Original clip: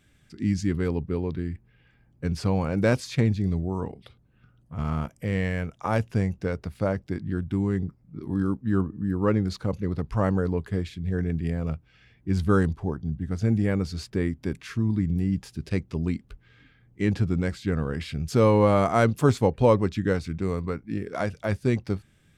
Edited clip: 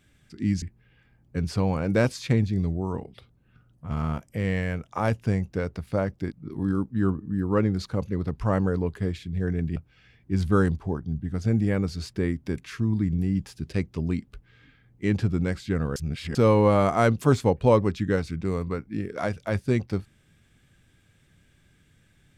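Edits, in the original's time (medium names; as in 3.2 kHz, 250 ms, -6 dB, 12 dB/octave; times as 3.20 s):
0.62–1.50 s: delete
7.20–8.03 s: delete
11.47–11.73 s: delete
17.93–18.32 s: reverse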